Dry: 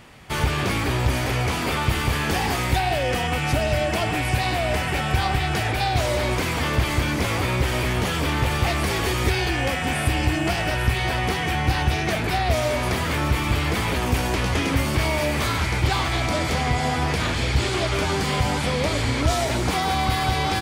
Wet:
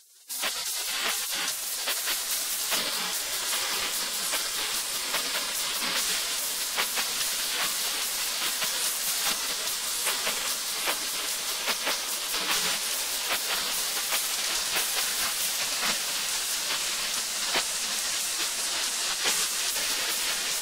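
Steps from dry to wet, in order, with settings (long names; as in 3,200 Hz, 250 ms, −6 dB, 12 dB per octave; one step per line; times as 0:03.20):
0:15.20–0:16.38: thirty-one-band graphic EQ 160 Hz −6 dB, 400 Hz +12 dB, 3,150 Hz −11 dB
gate on every frequency bin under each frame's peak −25 dB weak
feedback delay with all-pass diffusion 1,202 ms, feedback 72%, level −7.5 dB
level +7 dB
Ogg Vorbis 48 kbit/s 48,000 Hz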